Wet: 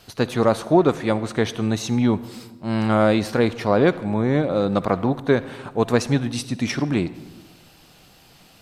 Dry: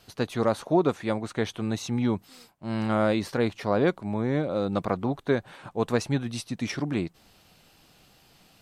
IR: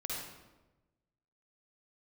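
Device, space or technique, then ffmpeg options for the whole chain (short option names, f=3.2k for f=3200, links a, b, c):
saturated reverb return: -filter_complex "[0:a]asplit=2[a][b];[1:a]atrim=start_sample=2205[c];[b][c]afir=irnorm=-1:irlink=0,asoftclip=type=tanh:threshold=-22dB,volume=-13dB[d];[a][d]amix=inputs=2:normalize=0,volume=5.5dB"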